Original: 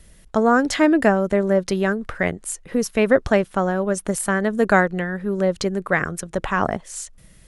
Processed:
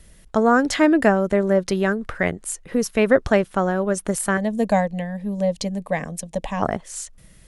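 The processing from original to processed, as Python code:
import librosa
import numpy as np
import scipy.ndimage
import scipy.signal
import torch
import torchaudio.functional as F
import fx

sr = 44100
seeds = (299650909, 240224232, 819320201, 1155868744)

y = fx.fixed_phaser(x, sr, hz=370.0, stages=6, at=(4.37, 6.62))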